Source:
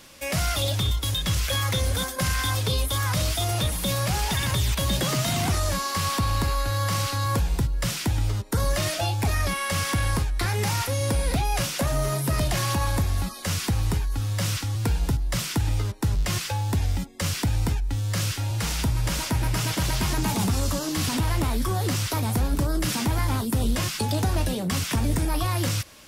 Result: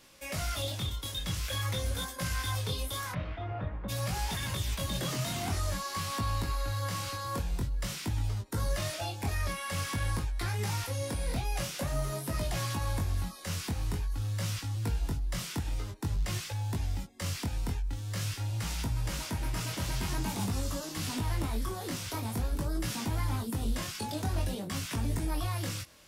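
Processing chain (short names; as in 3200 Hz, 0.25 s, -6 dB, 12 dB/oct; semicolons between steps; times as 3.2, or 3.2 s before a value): 3.11–3.88 LPF 2600 Hz -> 1600 Hz 24 dB/oct; chorus 0.48 Hz, delay 18 ms, depth 5.7 ms; gain -6 dB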